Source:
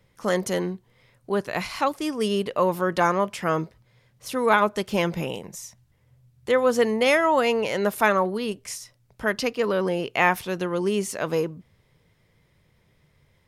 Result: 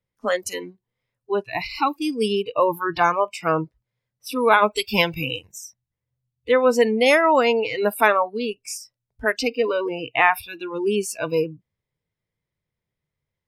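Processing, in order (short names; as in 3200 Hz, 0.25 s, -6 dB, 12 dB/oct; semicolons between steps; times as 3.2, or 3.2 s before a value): spectral noise reduction 25 dB; 4.71–5.52 high shelf 2200 Hz +12 dB; gain +3.5 dB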